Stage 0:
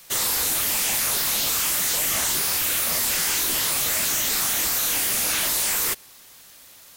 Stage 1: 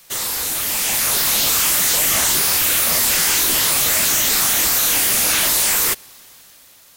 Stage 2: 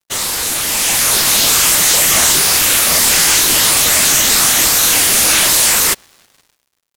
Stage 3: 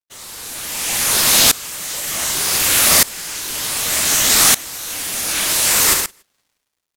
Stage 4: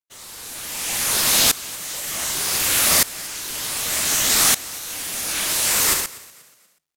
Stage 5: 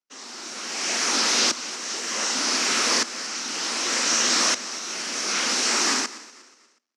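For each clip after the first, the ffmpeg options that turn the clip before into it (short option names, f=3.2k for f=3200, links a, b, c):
-af "dynaudnorm=f=200:g=9:m=6.5dB"
-af "crystalizer=i=1:c=0,adynamicsmooth=sensitivity=2:basefreq=4k,acrusher=bits=6:mix=0:aa=0.5,volume=5dB"
-filter_complex "[0:a]asplit=2[a][b];[b]aecho=0:1:69|170|284:0.422|0.335|0.1[c];[a][c]amix=inputs=2:normalize=0,alimiter=level_in=1.5dB:limit=-1dB:release=50:level=0:latency=1,aeval=exprs='val(0)*pow(10,-22*if(lt(mod(-0.66*n/s,1),2*abs(-0.66)/1000),1-mod(-0.66*n/s,1)/(2*abs(-0.66)/1000),(mod(-0.66*n/s,1)-2*abs(-0.66)/1000)/(1-2*abs(-0.66)/1000))/20)':c=same"
-filter_complex "[0:a]asplit=4[a][b][c][d];[b]adelay=241,afreqshift=47,volume=-21dB[e];[c]adelay=482,afreqshift=94,volume=-29.9dB[f];[d]adelay=723,afreqshift=141,volume=-38.7dB[g];[a][e][f][g]amix=inputs=4:normalize=0,volume=-4.5dB"
-af "afreqshift=-120,asoftclip=type=hard:threshold=-18dB,highpass=f=230:w=0.5412,highpass=f=230:w=1.3066,equalizer=f=240:t=q:w=4:g=10,equalizer=f=350:t=q:w=4:g=4,equalizer=f=1.3k:t=q:w=4:g=4,equalizer=f=3.5k:t=q:w=4:g=-5,equalizer=f=5.6k:t=q:w=4:g=6,lowpass=f=6.4k:w=0.5412,lowpass=f=6.4k:w=1.3066,volume=1.5dB"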